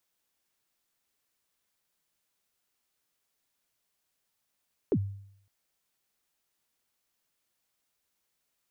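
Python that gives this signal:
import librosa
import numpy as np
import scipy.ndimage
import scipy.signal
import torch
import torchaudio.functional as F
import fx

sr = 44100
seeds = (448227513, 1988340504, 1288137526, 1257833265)

y = fx.drum_kick(sr, seeds[0], length_s=0.56, level_db=-20.0, start_hz=480.0, end_hz=99.0, sweep_ms=61.0, decay_s=0.68, click=False)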